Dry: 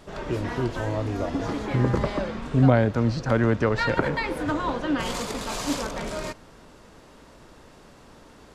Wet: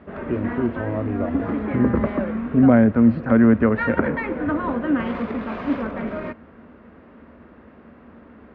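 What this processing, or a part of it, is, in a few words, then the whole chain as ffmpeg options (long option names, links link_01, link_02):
bass cabinet: -af "highpass=68,equalizer=frequency=77:width_type=q:width=4:gain=7,equalizer=frequency=130:width_type=q:width=4:gain=-8,equalizer=frequency=230:width_type=q:width=4:gain=10,equalizer=frequency=880:width_type=q:width=4:gain=-5,lowpass=frequency=2200:width=0.5412,lowpass=frequency=2200:width=1.3066,volume=2.5dB"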